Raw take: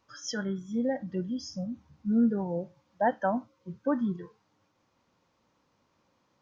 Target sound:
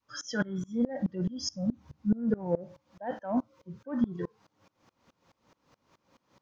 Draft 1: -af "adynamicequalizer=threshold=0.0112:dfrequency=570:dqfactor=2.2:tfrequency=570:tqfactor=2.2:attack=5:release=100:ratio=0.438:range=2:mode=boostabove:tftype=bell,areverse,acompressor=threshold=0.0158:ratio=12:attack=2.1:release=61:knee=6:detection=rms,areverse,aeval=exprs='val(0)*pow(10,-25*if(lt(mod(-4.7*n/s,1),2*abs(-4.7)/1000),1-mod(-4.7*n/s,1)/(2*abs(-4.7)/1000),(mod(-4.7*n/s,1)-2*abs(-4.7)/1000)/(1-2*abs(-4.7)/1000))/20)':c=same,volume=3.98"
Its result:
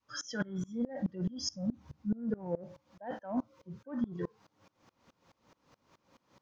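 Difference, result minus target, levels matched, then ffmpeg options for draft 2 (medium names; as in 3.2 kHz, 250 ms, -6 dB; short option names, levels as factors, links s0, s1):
compression: peak gain reduction +6.5 dB
-af "adynamicequalizer=threshold=0.0112:dfrequency=570:dqfactor=2.2:tfrequency=570:tqfactor=2.2:attack=5:release=100:ratio=0.438:range=2:mode=boostabove:tftype=bell,areverse,acompressor=threshold=0.0355:ratio=12:attack=2.1:release=61:knee=6:detection=rms,areverse,aeval=exprs='val(0)*pow(10,-25*if(lt(mod(-4.7*n/s,1),2*abs(-4.7)/1000),1-mod(-4.7*n/s,1)/(2*abs(-4.7)/1000),(mod(-4.7*n/s,1)-2*abs(-4.7)/1000)/(1-2*abs(-4.7)/1000))/20)':c=same,volume=3.98"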